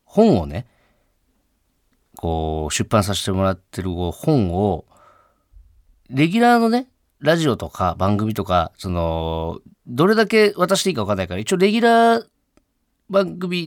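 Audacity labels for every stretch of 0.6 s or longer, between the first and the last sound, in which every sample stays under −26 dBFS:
0.610000	2.170000	silence
4.800000	6.130000	silence
12.210000	13.110000	silence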